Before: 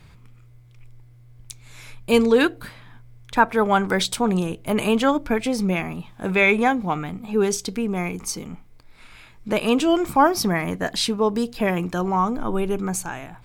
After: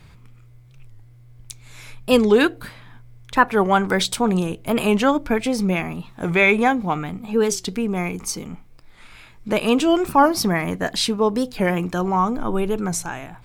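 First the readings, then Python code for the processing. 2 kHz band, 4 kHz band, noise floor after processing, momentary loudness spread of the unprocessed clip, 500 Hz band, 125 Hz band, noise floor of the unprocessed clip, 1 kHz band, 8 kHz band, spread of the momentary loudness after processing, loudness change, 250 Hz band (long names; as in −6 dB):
+1.5 dB, +1.5 dB, −47 dBFS, 12 LU, +1.5 dB, +2.0 dB, −49 dBFS, +1.5 dB, +1.5 dB, 12 LU, +1.5 dB, +1.5 dB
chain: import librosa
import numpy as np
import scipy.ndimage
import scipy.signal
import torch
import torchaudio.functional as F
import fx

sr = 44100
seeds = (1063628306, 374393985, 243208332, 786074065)

y = fx.record_warp(x, sr, rpm=45.0, depth_cents=160.0)
y = y * 10.0 ** (1.5 / 20.0)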